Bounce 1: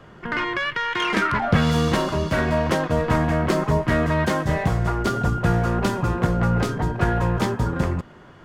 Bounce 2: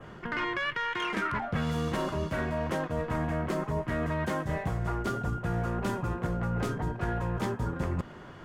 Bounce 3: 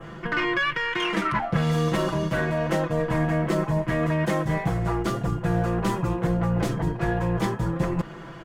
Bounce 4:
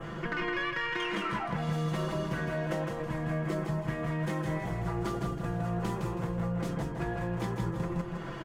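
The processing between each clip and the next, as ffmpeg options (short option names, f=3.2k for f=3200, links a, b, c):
-af "adynamicequalizer=threshold=0.00447:dfrequency=4600:dqfactor=1.3:tfrequency=4600:tqfactor=1.3:attack=5:release=100:ratio=0.375:range=2.5:mode=cutabove:tftype=bell,areverse,acompressor=threshold=-28dB:ratio=6,areverse"
-af "aecho=1:1:6:0.82,volume=4.5dB"
-filter_complex "[0:a]acompressor=threshold=-32dB:ratio=5,asplit=2[a][b];[b]aecho=0:1:161|322|483|644:0.596|0.203|0.0689|0.0234[c];[a][c]amix=inputs=2:normalize=0"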